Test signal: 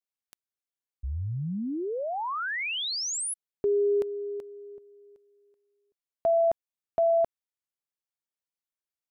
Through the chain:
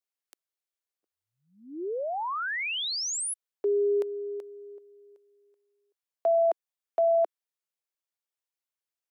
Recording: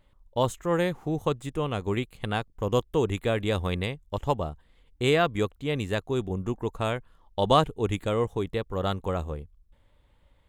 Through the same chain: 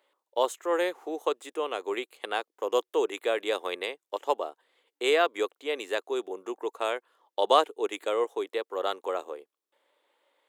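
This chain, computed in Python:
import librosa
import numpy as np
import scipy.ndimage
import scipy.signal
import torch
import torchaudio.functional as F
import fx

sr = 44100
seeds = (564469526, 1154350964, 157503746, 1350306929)

y = scipy.signal.sosfilt(scipy.signal.butter(6, 350.0, 'highpass', fs=sr, output='sos'), x)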